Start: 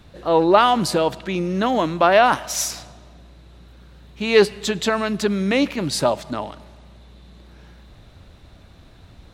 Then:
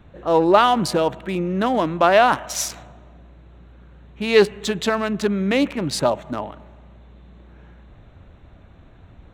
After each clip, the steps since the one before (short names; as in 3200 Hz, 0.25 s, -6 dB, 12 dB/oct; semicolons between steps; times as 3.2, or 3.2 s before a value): Wiener smoothing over 9 samples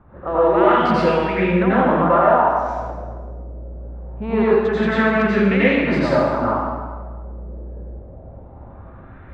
LFO low-pass sine 0.23 Hz 530–2300 Hz; compressor 3:1, threshold -20 dBFS, peak gain reduction 10.5 dB; plate-style reverb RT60 1.4 s, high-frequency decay 0.8×, pre-delay 75 ms, DRR -9.5 dB; gain -3 dB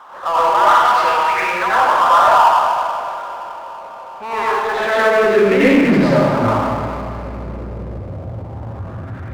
high-pass sweep 970 Hz -> 100 Hz, 4.57–6.56; Schroeder reverb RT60 3.6 s, combs from 27 ms, DRR 12.5 dB; power-law curve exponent 0.7; gain -2 dB